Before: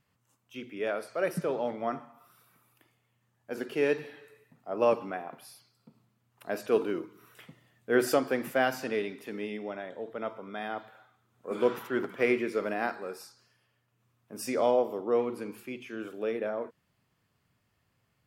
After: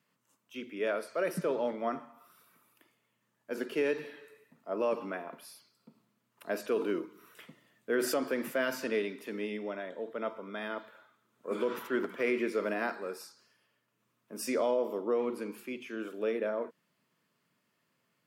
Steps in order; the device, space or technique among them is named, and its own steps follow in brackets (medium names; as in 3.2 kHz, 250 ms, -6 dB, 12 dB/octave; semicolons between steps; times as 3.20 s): PA system with an anti-feedback notch (high-pass 170 Hz 24 dB/octave; Butterworth band-stop 770 Hz, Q 6.9; peak limiter -21 dBFS, peak gain reduction 8 dB)